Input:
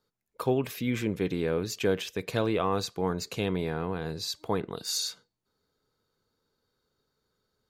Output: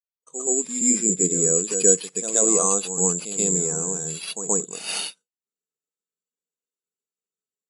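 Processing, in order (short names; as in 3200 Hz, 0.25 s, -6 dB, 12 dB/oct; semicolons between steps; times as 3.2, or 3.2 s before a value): opening faded in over 0.87 s; careless resampling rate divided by 6×, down none, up zero stuff; FFT band-pass 150–11000 Hz; reverse echo 0.128 s -6.5 dB; spectral expander 1.5:1; gain +3.5 dB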